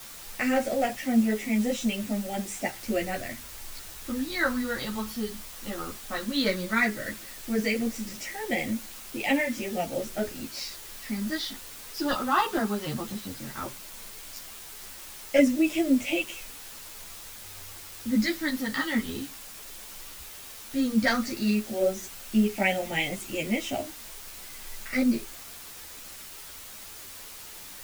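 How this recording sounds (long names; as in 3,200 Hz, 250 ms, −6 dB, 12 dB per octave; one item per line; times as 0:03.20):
phaser sweep stages 6, 0.14 Hz, lowest notch 600–1,200 Hz
a quantiser's noise floor 8 bits, dither triangular
a shimmering, thickened sound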